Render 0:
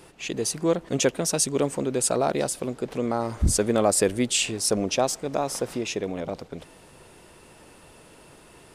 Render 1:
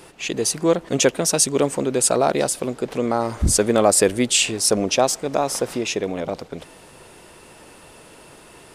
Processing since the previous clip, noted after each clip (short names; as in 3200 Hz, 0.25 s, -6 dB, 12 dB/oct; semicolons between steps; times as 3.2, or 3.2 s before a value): low shelf 240 Hz -4.5 dB; gain +6 dB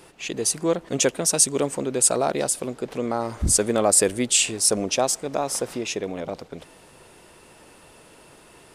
dynamic EQ 8800 Hz, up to +6 dB, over -32 dBFS, Q 1.1; gain -4.5 dB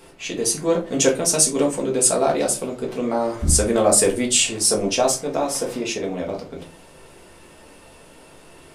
shoebox room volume 120 m³, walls furnished, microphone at 1.6 m; gain -1 dB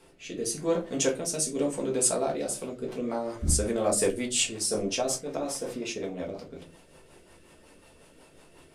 rotary speaker horn 0.9 Hz, later 5.5 Hz, at 2.23; gain -6.5 dB